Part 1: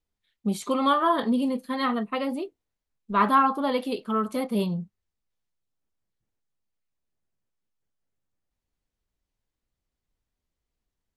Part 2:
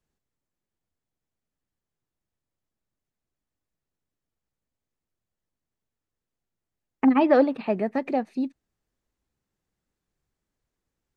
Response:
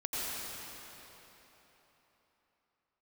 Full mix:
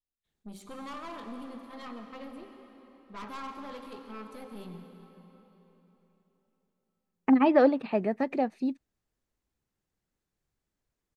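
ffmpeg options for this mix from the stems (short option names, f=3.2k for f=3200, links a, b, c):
-filter_complex "[0:a]bandreject=f=64.02:t=h:w=4,bandreject=f=128.04:t=h:w=4,bandreject=f=192.06:t=h:w=4,bandreject=f=256.08:t=h:w=4,bandreject=f=320.1:t=h:w=4,bandreject=f=384.12:t=h:w=4,bandreject=f=448.14:t=h:w=4,bandreject=f=512.16:t=h:w=4,bandreject=f=576.18:t=h:w=4,bandreject=f=640.2:t=h:w=4,bandreject=f=704.22:t=h:w=4,bandreject=f=768.24:t=h:w=4,bandreject=f=832.26:t=h:w=4,bandreject=f=896.28:t=h:w=4,bandreject=f=960.3:t=h:w=4,bandreject=f=1.02432k:t=h:w=4,bandreject=f=1.08834k:t=h:w=4,bandreject=f=1.15236k:t=h:w=4,bandreject=f=1.21638k:t=h:w=4,bandreject=f=1.2804k:t=h:w=4,bandreject=f=1.34442k:t=h:w=4,bandreject=f=1.40844k:t=h:w=4,bandreject=f=1.47246k:t=h:w=4,bandreject=f=1.53648k:t=h:w=4,bandreject=f=1.6005k:t=h:w=4,bandreject=f=1.66452k:t=h:w=4,bandreject=f=1.72854k:t=h:w=4,aeval=exprs='(tanh(17.8*val(0)+0.5)-tanh(0.5))/17.8':c=same,volume=-15.5dB,asplit=2[a][b];[b]volume=-9dB[c];[1:a]adelay=250,volume=-2.5dB[d];[2:a]atrim=start_sample=2205[e];[c][e]afir=irnorm=-1:irlink=0[f];[a][d][f]amix=inputs=3:normalize=0"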